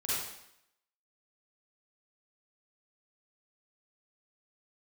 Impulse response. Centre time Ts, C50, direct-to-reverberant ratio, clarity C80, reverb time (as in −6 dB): 90 ms, −5.5 dB, −10.0 dB, 0.5 dB, 0.75 s